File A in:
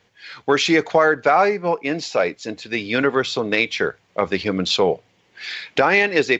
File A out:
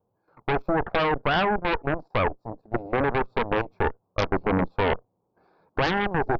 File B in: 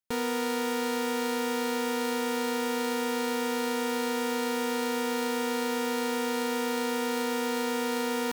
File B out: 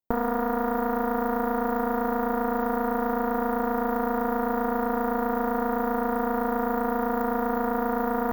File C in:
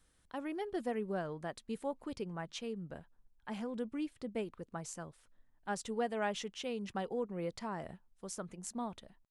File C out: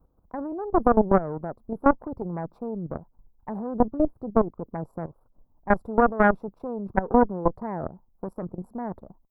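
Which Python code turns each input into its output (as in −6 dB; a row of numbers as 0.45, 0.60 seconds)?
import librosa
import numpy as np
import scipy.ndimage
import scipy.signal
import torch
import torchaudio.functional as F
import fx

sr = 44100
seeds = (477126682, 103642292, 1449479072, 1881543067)

y = scipy.signal.sosfilt(scipy.signal.cheby2(4, 40, [1800.0, 9900.0], 'bandstop', fs=sr, output='sos'), x)
y = fx.level_steps(y, sr, step_db=12)
y = fx.cheby_harmonics(y, sr, harmonics=(8,), levels_db=(-6,), full_scale_db=-12.5)
y = y * 10.0 ** (-26 / 20.0) / np.sqrt(np.mean(np.square(y)))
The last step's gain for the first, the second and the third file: −2.5, +6.0, +15.5 decibels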